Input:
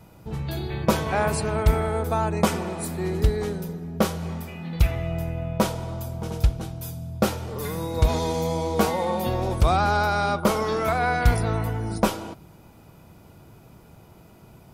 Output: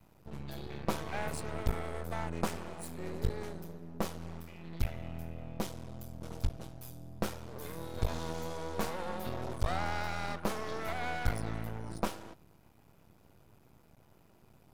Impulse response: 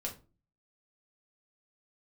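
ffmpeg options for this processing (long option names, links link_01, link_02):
-filter_complex "[0:a]asettb=1/sr,asplit=3[link_01][link_02][link_03];[link_01]atrim=end=4.904[link_04];[link_02]atrim=start=4.9:end=6.24,asetpts=PTS-STARTPTS,afade=type=in:duration=0.004:curve=qsin,afade=type=out:start_time=1.336:duration=0.004:curve=qsin,equalizer=frequency=980:width_type=o:width=1.5:gain=-7[link_05];[link_03]atrim=start=6.236[link_06];[link_04][link_05]acrossfade=duration=0.004:curve1=hsin:curve2=qsin[link_07];[link_07][link_06]acrossfade=duration=0.004:curve1=qsin:curve2=hsin,aeval=exprs='max(val(0),0)':channel_layout=same,volume=-9dB"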